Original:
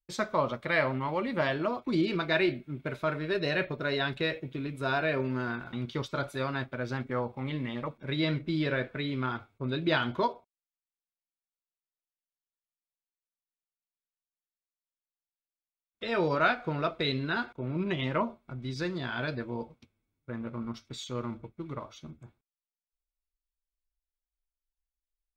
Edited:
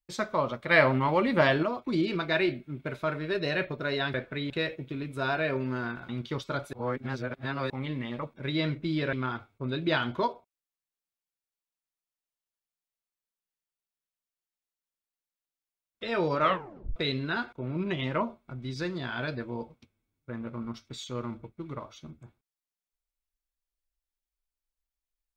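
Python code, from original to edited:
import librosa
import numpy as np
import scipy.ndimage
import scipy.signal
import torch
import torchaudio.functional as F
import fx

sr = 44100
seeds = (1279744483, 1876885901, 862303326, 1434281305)

y = fx.edit(x, sr, fx.clip_gain(start_s=0.71, length_s=0.92, db=6.0),
    fx.reverse_span(start_s=6.37, length_s=0.97),
    fx.move(start_s=8.77, length_s=0.36, to_s=4.14),
    fx.tape_stop(start_s=16.4, length_s=0.56), tone=tone)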